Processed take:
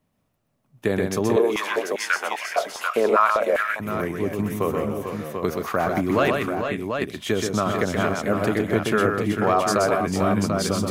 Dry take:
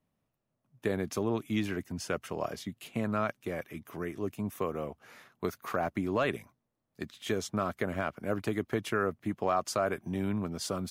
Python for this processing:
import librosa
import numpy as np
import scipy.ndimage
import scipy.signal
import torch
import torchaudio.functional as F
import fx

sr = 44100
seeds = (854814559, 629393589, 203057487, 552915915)

y = fx.echo_multitap(x, sr, ms=(127, 163, 398, 445, 464, 739), db=(-4.5, -20.0, -18.5, -7.5, -14.0, -6.0))
y = fx.filter_held_highpass(y, sr, hz=5.0, low_hz=430.0, high_hz=2000.0, at=(1.36, 3.8))
y = y * 10.0 ** (8.0 / 20.0)